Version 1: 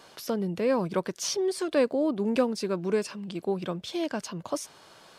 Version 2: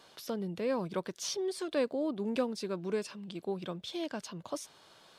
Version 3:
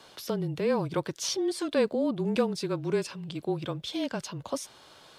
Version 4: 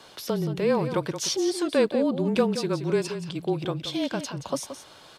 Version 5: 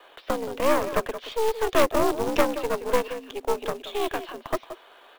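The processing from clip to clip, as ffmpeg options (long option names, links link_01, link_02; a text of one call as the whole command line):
ffmpeg -i in.wav -af "equalizer=frequency=3600:width=3:gain=5,volume=-7dB" out.wav
ffmpeg -i in.wav -af "afreqshift=-27,volume=5.5dB" out.wav
ffmpeg -i in.wav -af "aecho=1:1:175:0.299,volume=3.5dB" out.wav
ffmpeg -i in.wav -af "highpass=frequency=230:width_type=q:width=0.5412,highpass=frequency=230:width_type=q:width=1.307,lowpass=frequency=3200:width_type=q:width=0.5176,lowpass=frequency=3200:width_type=q:width=0.7071,lowpass=frequency=3200:width_type=q:width=1.932,afreqshift=91,acrusher=bits=4:mode=log:mix=0:aa=0.000001,aeval=exprs='0.282*(cos(1*acos(clip(val(0)/0.282,-1,1)))-cos(1*PI/2))+0.1*(cos(4*acos(clip(val(0)/0.282,-1,1)))-cos(4*PI/2))':channel_layout=same" out.wav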